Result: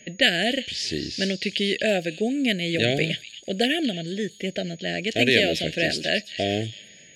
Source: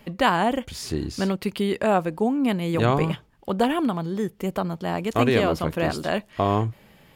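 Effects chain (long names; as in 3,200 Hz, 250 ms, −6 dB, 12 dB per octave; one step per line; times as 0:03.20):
meter weighting curve D
low-pass that shuts in the quiet parts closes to 2,500 Hz, open at −16 dBFS
elliptic band-stop filter 660–1,700 Hz, stop band 70 dB
echo through a band-pass that steps 232 ms, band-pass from 4,000 Hz, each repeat 0.7 octaves, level −9 dB
steady tone 6,700 Hz −51 dBFS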